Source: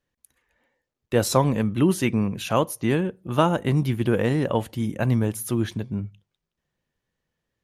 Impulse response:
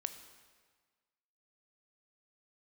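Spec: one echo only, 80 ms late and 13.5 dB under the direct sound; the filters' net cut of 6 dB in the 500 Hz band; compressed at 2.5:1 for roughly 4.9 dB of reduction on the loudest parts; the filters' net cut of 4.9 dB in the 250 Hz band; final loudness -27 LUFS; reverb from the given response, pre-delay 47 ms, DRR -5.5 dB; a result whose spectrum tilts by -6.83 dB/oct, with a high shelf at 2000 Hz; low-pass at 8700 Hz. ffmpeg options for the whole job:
-filter_complex "[0:a]lowpass=8.7k,equalizer=f=250:t=o:g=-5,equalizer=f=500:t=o:g=-5.5,highshelf=f=2k:g=-7,acompressor=threshold=-26dB:ratio=2.5,aecho=1:1:80:0.211,asplit=2[a][b];[1:a]atrim=start_sample=2205,adelay=47[c];[b][c]afir=irnorm=-1:irlink=0,volume=6.5dB[d];[a][d]amix=inputs=2:normalize=0,volume=-3dB"

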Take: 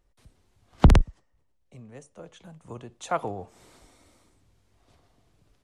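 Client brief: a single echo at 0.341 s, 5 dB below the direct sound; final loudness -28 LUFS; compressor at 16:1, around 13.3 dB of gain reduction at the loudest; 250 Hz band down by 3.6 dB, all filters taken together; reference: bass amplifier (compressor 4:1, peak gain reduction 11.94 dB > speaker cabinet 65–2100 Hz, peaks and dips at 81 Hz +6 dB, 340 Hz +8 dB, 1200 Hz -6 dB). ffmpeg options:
-af "equalizer=f=250:t=o:g=-8.5,acompressor=threshold=-23dB:ratio=16,aecho=1:1:341:0.562,acompressor=threshold=-35dB:ratio=4,highpass=f=65:w=0.5412,highpass=f=65:w=1.3066,equalizer=f=81:t=q:w=4:g=6,equalizer=f=340:t=q:w=4:g=8,equalizer=f=1.2k:t=q:w=4:g=-6,lowpass=f=2.1k:w=0.5412,lowpass=f=2.1k:w=1.3066,volume=15.5dB"

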